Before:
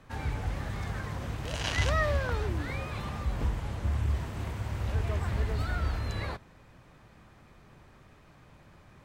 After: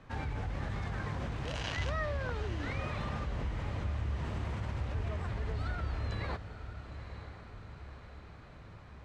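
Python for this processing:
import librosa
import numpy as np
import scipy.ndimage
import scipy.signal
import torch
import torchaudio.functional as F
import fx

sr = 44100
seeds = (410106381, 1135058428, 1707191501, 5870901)

p1 = fx.over_compress(x, sr, threshold_db=-36.0, ratio=-1.0)
p2 = x + (p1 * librosa.db_to_amplitude(0.5))
p3 = fx.air_absorb(p2, sr, metres=79.0)
p4 = fx.echo_diffused(p3, sr, ms=926, feedback_pct=59, wet_db=-11.0)
y = p4 * librosa.db_to_amplitude(-8.5)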